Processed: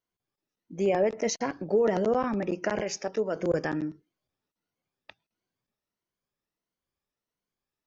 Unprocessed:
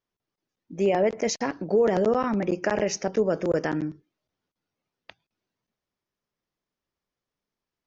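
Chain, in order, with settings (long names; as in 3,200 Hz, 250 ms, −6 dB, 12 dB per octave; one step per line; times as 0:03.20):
rippled gain that drifts along the octave scale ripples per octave 1.9, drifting +1.5 Hz, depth 7 dB
0:02.81–0:03.36: low-shelf EQ 330 Hz −8.5 dB
level −3.5 dB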